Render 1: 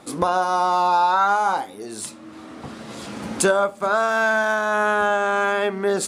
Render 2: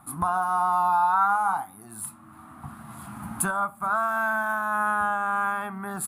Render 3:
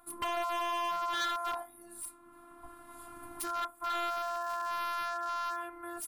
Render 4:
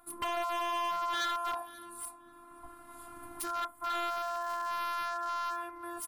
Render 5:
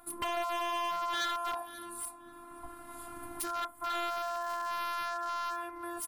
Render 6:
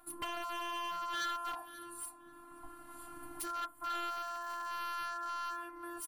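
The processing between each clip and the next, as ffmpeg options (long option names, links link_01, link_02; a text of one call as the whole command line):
ffmpeg -i in.wav -af "firequalizer=gain_entry='entry(140,0);entry(490,-29);entry(710,-6);entry(1200,0);entry(1900,-12);entry(3000,-17);entry(5700,-23);entry(11000,7)':delay=0.05:min_phase=1" out.wav
ffmpeg -i in.wav -af "afftfilt=real='hypot(re,im)*cos(PI*b)':imag='0':win_size=512:overlap=0.75,aeval=exprs='0.0631*(abs(mod(val(0)/0.0631+3,4)-2)-1)':channel_layout=same,volume=-3.5dB" out.wav
ffmpeg -i in.wav -filter_complex "[0:a]asplit=2[link_01][link_02];[link_02]adelay=535,lowpass=frequency=2400:poles=1,volume=-16.5dB,asplit=2[link_03][link_04];[link_04]adelay=535,lowpass=frequency=2400:poles=1,volume=0.26,asplit=2[link_05][link_06];[link_06]adelay=535,lowpass=frequency=2400:poles=1,volume=0.26[link_07];[link_01][link_03][link_05][link_07]amix=inputs=4:normalize=0" out.wav
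ffmpeg -i in.wav -filter_complex "[0:a]equalizer=frequency=1200:width_type=o:width=0.46:gain=-3.5,asplit=2[link_01][link_02];[link_02]acompressor=threshold=-44dB:ratio=6,volume=1dB[link_03];[link_01][link_03]amix=inputs=2:normalize=0,volume=-1.5dB" out.wav
ffmpeg -i in.wav -af "aecho=1:1:6.5:0.52,volume=-5.5dB" out.wav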